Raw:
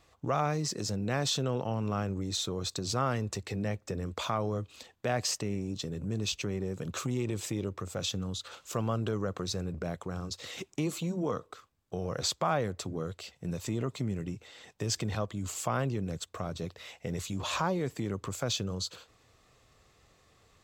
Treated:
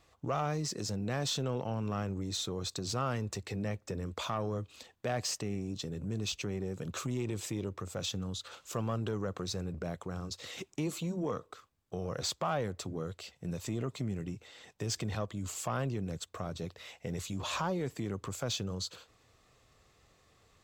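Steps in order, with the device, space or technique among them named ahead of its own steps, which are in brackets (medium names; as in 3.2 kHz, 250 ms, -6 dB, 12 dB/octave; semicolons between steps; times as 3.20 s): saturation between pre-emphasis and de-emphasis (treble shelf 4.8 kHz +6.5 dB; saturation -20.5 dBFS, distortion -20 dB; treble shelf 4.8 kHz -6.5 dB); trim -2 dB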